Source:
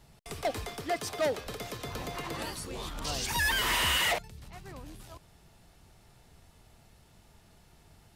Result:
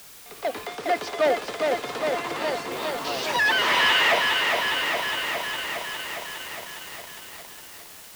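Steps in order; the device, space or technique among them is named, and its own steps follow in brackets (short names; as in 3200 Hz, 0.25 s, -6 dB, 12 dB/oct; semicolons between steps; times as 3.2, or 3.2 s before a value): dictaphone (BPF 320–3600 Hz; AGC gain up to 11 dB; wow and flutter; white noise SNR 17 dB); 0.67–2.72 LPF 9200 Hz 24 dB/oct; lo-fi delay 0.409 s, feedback 80%, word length 7-bit, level -3.5 dB; gain -3 dB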